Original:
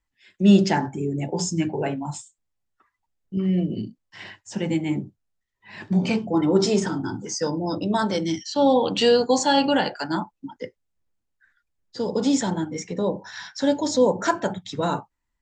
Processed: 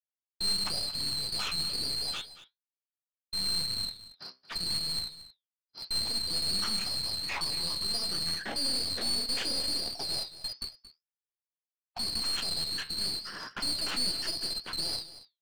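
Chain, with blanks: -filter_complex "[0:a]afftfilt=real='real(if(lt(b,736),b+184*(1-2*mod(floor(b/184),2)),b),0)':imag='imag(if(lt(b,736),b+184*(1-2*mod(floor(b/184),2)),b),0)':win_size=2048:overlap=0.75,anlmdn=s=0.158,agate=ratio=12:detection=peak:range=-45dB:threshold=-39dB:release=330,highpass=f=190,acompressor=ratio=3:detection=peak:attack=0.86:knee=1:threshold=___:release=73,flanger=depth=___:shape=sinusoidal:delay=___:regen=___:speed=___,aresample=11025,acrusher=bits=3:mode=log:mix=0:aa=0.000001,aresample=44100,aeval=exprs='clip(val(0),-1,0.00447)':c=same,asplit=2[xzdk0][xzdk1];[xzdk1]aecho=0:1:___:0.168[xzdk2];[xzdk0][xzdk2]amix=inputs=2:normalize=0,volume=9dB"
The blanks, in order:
-34dB, 7.5, 8.3, 69, 0.81, 227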